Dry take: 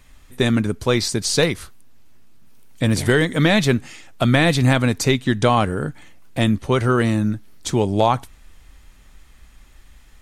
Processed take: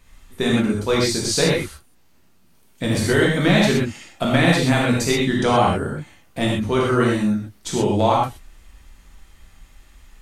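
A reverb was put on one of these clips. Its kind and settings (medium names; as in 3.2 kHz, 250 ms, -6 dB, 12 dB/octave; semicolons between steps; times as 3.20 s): gated-style reverb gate 150 ms flat, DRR -4 dB; trim -5 dB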